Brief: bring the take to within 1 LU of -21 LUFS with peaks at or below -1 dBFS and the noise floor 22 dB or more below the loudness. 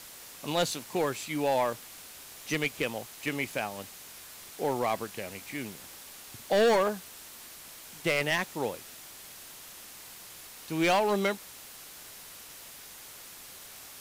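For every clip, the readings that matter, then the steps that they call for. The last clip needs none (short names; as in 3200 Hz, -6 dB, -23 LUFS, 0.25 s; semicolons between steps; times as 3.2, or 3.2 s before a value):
clipped 1.0%; flat tops at -20.0 dBFS; noise floor -48 dBFS; noise floor target -52 dBFS; loudness -30.0 LUFS; peak -20.0 dBFS; loudness target -21.0 LUFS
-> clip repair -20 dBFS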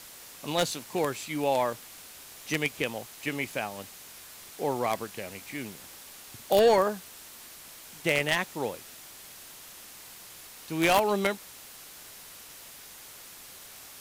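clipped 0.0%; noise floor -48 dBFS; noise floor target -51 dBFS
-> noise print and reduce 6 dB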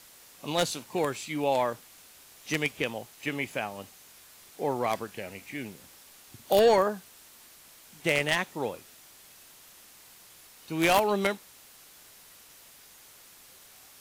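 noise floor -54 dBFS; loudness -28.5 LUFS; peak -11.0 dBFS; loudness target -21.0 LUFS
-> gain +7.5 dB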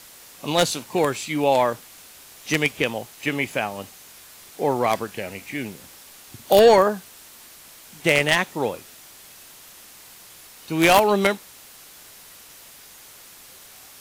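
loudness -21.0 LUFS; peak -3.5 dBFS; noise floor -46 dBFS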